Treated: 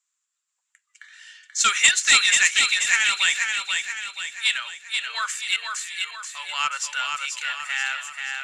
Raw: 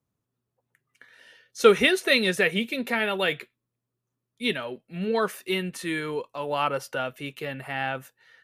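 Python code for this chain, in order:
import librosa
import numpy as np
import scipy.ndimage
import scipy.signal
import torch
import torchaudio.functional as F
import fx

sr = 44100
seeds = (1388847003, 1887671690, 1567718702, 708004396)

p1 = scipy.signal.sosfilt(scipy.signal.butter(4, 1200.0, 'highpass', fs=sr, output='sos'), x)
p2 = fx.peak_eq(p1, sr, hz=3000.0, db=7.5, octaves=2.9)
p3 = fx.level_steps(p2, sr, step_db=20, at=(5.56, 6.24))
p4 = 10.0 ** (-11.0 / 20.0) * np.tanh(p3 / 10.0 ** (-11.0 / 20.0))
p5 = fx.lowpass_res(p4, sr, hz=7400.0, q=11.0)
y = p5 + fx.echo_feedback(p5, sr, ms=483, feedback_pct=48, wet_db=-4.5, dry=0)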